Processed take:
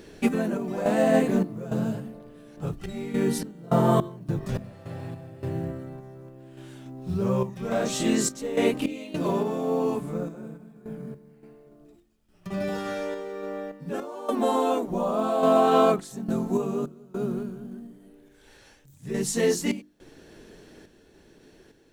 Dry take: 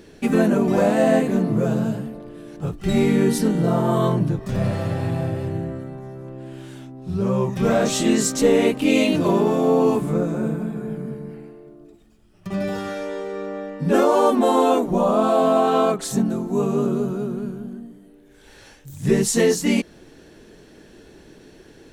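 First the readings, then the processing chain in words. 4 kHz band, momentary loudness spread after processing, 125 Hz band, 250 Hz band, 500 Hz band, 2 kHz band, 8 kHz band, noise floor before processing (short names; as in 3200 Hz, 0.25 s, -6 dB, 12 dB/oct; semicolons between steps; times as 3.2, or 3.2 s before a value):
-6.5 dB, 20 LU, -7.5 dB, -7.0 dB, -6.0 dB, -6.5 dB, -6.0 dB, -49 dBFS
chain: random-step tremolo 3.5 Hz, depth 95%; notches 50/100/150/200/250/300/350 Hz; companded quantiser 8-bit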